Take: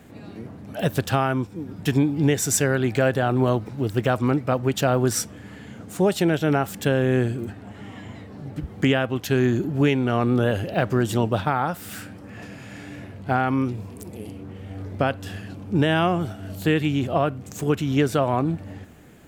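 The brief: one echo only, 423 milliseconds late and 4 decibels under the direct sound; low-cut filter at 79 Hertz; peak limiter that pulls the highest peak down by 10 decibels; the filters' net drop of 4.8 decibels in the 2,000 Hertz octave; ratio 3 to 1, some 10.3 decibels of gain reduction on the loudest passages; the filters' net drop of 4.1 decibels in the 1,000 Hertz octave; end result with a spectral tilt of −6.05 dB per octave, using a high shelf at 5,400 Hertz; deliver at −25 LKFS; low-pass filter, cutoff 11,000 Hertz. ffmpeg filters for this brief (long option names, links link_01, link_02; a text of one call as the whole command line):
ffmpeg -i in.wav -af "highpass=79,lowpass=11000,equalizer=frequency=1000:width_type=o:gain=-5,equalizer=frequency=2000:width_type=o:gain=-3.5,highshelf=frequency=5400:gain=-8,acompressor=threshold=-30dB:ratio=3,alimiter=level_in=0.5dB:limit=-24dB:level=0:latency=1,volume=-0.5dB,aecho=1:1:423:0.631,volume=9.5dB" out.wav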